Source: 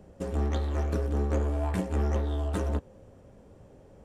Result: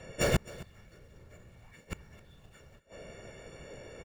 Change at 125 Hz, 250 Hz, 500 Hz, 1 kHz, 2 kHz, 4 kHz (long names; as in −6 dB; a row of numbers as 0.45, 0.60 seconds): −11.0, −9.0, −5.0, −7.5, +4.0, +5.5 decibels